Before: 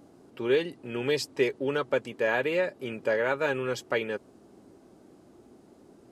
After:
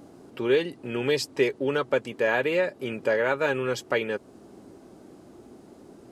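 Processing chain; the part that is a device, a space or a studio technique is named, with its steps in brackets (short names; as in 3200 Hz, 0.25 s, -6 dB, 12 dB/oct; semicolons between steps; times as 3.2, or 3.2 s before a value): parallel compression (in parallel at -3.5 dB: compressor, threshold -39 dBFS, peak gain reduction 18 dB); on the sum: gain +1.5 dB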